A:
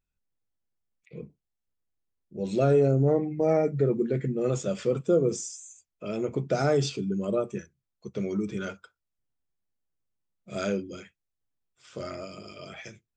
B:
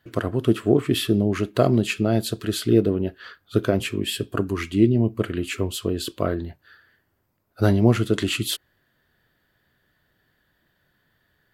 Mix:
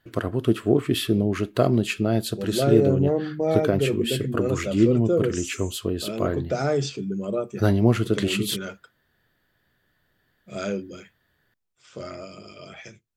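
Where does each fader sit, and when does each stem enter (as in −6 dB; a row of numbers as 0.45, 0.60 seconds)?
+0.5, −1.5 decibels; 0.00, 0.00 seconds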